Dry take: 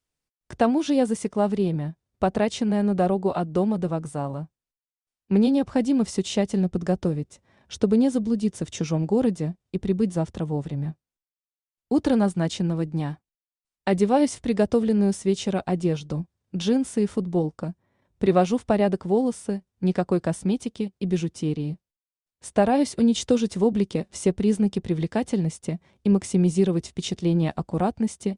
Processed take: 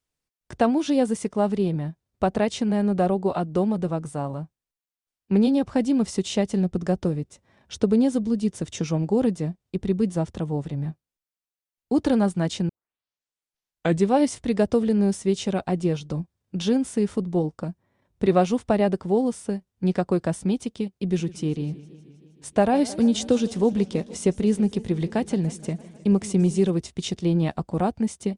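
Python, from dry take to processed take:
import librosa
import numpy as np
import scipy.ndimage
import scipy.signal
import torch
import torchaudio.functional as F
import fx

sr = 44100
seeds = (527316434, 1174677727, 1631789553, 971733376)

y = fx.echo_warbled(x, sr, ms=157, feedback_pct=70, rate_hz=2.8, cents=127, wet_db=-19.0, at=(21.03, 26.7))
y = fx.edit(y, sr, fx.tape_start(start_s=12.69, length_s=1.39), tone=tone)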